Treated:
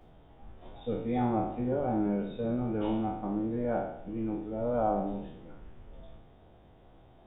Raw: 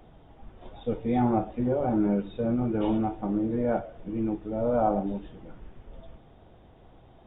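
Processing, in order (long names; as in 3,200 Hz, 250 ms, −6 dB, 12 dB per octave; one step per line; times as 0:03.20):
peak hold with a decay on every bin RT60 0.75 s
level −5.5 dB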